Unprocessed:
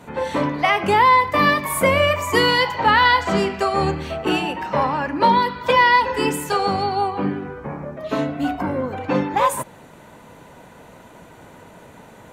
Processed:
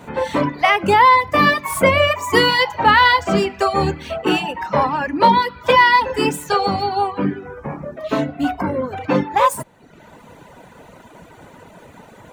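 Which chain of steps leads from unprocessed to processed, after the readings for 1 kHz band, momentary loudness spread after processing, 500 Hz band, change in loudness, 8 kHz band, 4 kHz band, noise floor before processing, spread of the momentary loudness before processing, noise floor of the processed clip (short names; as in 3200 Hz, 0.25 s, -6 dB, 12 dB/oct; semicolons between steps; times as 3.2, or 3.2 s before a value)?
+2.0 dB, 11 LU, +2.0 dB, +2.5 dB, 0.0 dB, +2.5 dB, -45 dBFS, 11 LU, -46 dBFS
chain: median filter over 3 samples; reverb removal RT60 0.87 s; gain +3.5 dB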